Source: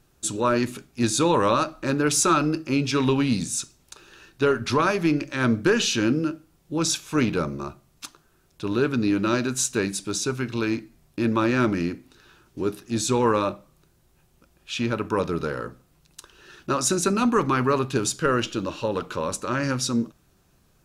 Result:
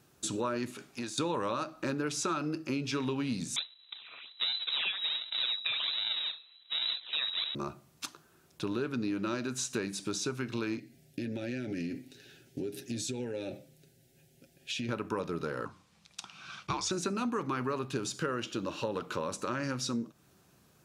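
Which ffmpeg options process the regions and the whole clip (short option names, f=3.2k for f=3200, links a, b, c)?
-filter_complex "[0:a]asettb=1/sr,asplit=3[a][b][c];[a]atrim=end=0.704[d];[b]atrim=start=0.7:end=1.18,asetpts=PTS-STARTPTS,afade=t=in:d=0.004:c=qsin,afade=t=out:st=0.476:d=0.004:c=qsin,equalizer=f=11k:t=o:w=2.7:g=11,acompressor=threshold=-32dB:ratio=8:attack=3.2:release=140:knee=1:detection=peak,asplit=2[e][f];[f]highpass=f=720:p=1,volume=11dB,asoftclip=type=tanh:threshold=-15dB[g];[e][g]amix=inputs=2:normalize=0,lowpass=f=1.3k:p=1,volume=-6dB[h];[c]atrim=start=1.176[i];[d][h]acrossfade=d=0.004:c1=hsin:c2=qsin[j];[j][i]acrossfade=d=0.004:c1=qsin:c2=hsin,asettb=1/sr,asplit=3[k][l][m];[k]atrim=end=3.564[n];[l]atrim=start=3.56:end=7.55,asetpts=PTS-STARTPTS,afade=t=in:d=0.004:c=qsin,afade=t=out:st=3.986:d=0.004:c=qsin,aecho=1:1:1.4:0.61,atrim=end_sample=175959,acrusher=samples=35:mix=1:aa=0.000001:lfo=1:lforange=56:lforate=1.3,lowpass=f=3.4k:t=q:w=0.5098,lowpass=f=3.4k:t=q:w=0.6013,lowpass=f=3.4k:t=q:w=0.9,lowpass=f=3.4k:t=q:w=2.563,afreqshift=-4000[o];[m]atrim=start=7.546[p];[n][o]acrossfade=d=0.004:c1=hsin:c2=qsin[q];[q][p]acrossfade=d=0.004:c1=qsin:c2=hsin,asettb=1/sr,asplit=3[r][s][t];[r]atrim=end=10.784[u];[s]atrim=start=10.78:end=14.89,asetpts=PTS-STARTPTS,afade=t=in:d=0.004:c=qsin,afade=t=out:st=4.106:d=0.004:c=qsin,aecho=1:1:7.4:0.47,atrim=end_sample=181251,acompressor=threshold=-30dB:ratio=8:attack=3.2:release=140:knee=1:detection=peak,asuperstop=centerf=1100:order=4:qfactor=1.1[v];[t]atrim=start=14.886[w];[u][v]acrossfade=d=0.004:c1=hsin:c2=qsin[x];[x][w]acrossfade=d=0.004:c1=qsin:c2=hsin,asettb=1/sr,asplit=3[y][z][aa];[y]atrim=end=15.654[ab];[z]atrim=start=15.65:end=16.91,asetpts=PTS-STARTPTS,afade=t=in:d=0.004:c=qsin,afade=t=out:st=1.256:d=0.004:c=qsin,lowpass=6.3k,tiltshelf=f=1.1k:g=-5,afreqshift=-220[ac];[aa]atrim=start=16.906[ad];[ab][ac]acrossfade=d=0.004:c1=hsin:c2=qsin[ae];[ae][ad]acrossfade=d=0.004:c1=qsin:c2=hsin,acrossover=split=6200[af][ag];[ag]acompressor=threshold=-37dB:ratio=4:attack=1:release=60[ah];[af][ah]amix=inputs=2:normalize=0,highpass=110,acompressor=threshold=-32dB:ratio=4"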